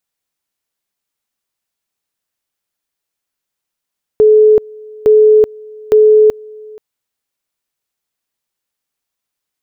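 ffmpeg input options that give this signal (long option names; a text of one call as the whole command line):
ffmpeg -f lavfi -i "aevalsrc='pow(10,(-3.5-26*gte(mod(t,0.86),0.38))/20)*sin(2*PI*429*t)':duration=2.58:sample_rate=44100" out.wav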